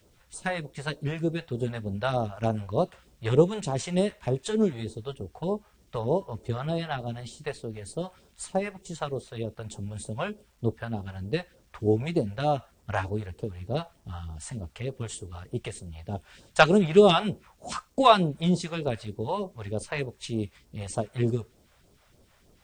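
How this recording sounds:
phaser sweep stages 2, 3.3 Hz, lowest notch 250–2,000 Hz
a quantiser's noise floor 12 bits, dither none

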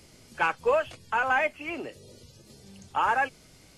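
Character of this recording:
background noise floor −55 dBFS
spectral slope −1.0 dB per octave

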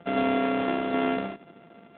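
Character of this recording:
a buzz of ramps at a fixed pitch in blocks of 64 samples
AMR narrowband

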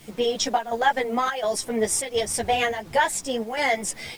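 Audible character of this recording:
chopped level 1.4 Hz, depth 60%, duty 80%
a quantiser's noise floor 8 bits, dither none
a shimmering, thickened sound

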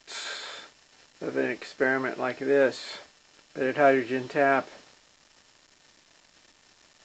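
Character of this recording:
a quantiser's noise floor 8 bits, dither none
A-law companding

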